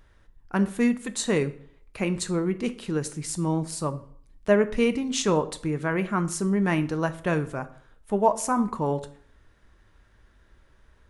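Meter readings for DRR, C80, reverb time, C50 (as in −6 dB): 9.5 dB, 20.0 dB, 0.55 s, 16.0 dB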